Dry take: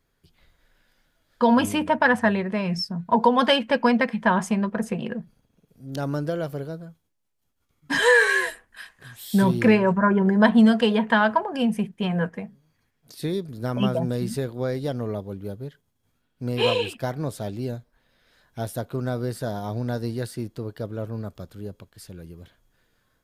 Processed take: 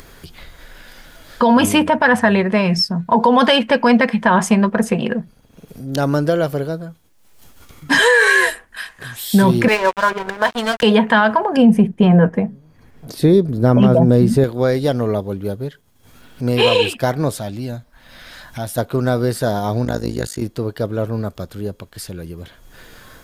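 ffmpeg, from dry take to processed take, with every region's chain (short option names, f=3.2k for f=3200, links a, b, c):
-filter_complex "[0:a]asettb=1/sr,asplit=3[a][b][c];[a]atrim=end=9.684[d];[b]atrim=start=9.68:end=10.83,asetpts=PTS-STARTPTS,afade=t=in:d=0.004:c=qsin,afade=t=out:st=1.146:d=0.004:c=qsin,highpass=560,aeval=exprs='sgn(val(0))*max(abs(val(0))-0.0211,0)':c=same[e];[c]atrim=start=10.826[f];[d][e]acrossfade=d=0.004:c1=hsin:c2=qsin[g];[g][f]acrossfade=d=0.004:c1=qsin:c2=hsin,asettb=1/sr,asplit=3[h][i][j];[h]atrim=end=11.574[k];[i]atrim=start=11.57:end=14.44,asetpts=PTS-STARTPTS,afade=t=in:d=0.004:c=qsin,afade=t=out:st=2.866:d=0.004:c=qsin,tiltshelf=f=1.1k:g=7,volume=8.5dB,asoftclip=hard,volume=-8.5dB[l];[j]atrim=start=14.436[m];[k][l]acrossfade=d=0.004:c1=hsin:c2=qsin[n];[n][m]acrossfade=d=0.004:c1=qsin:c2=hsin,asettb=1/sr,asplit=3[o][p][q];[o]atrim=end=17.394[r];[p]atrim=start=17.39:end=18.78,asetpts=PTS-STARTPTS,afade=t=in:d=0.004:c=qsin,afade=t=out:st=1.386:d=0.004:c=qsin,equalizer=f=430:t=o:w=0.41:g=-11.5,acompressor=threshold=-39dB:ratio=1.5:attack=3.2:release=140:knee=1:detection=peak[s];[q]atrim=start=18.776[t];[r][s]acrossfade=d=0.004:c1=hsin:c2=qsin[u];[u][t]acrossfade=d=0.004:c1=qsin:c2=hsin,asettb=1/sr,asplit=3[v][w][x];[v]atrim=end=19.854[y];[w]atrim=start=19.85:end=20.42,asetpts=PTS-STARTPTS,afade=t=in:d=0.004:c=qsin,afade=t=out:st=0.566:d=0.004:c=qsin,tremolo=f=53:d=0.947,equalizer=f=6.8k:w=6.8:g=13.5[z];[x]atrim=start=20.416[aa];[y][z]acrossfade=d=0.004:c1=hsin:c2=qsin[ab];[ab][aa]acrossfade=d=0.004:c1=qsin:c2=hsin,equalizer=f=130:w=0.61:g=-3,acompressor=mode=upward:threshold=-38dB:ratio=2.5,alimiter=level_in=14.5dB:limit=-1dB:release=50:level=0:latency=1,volume=-3dB"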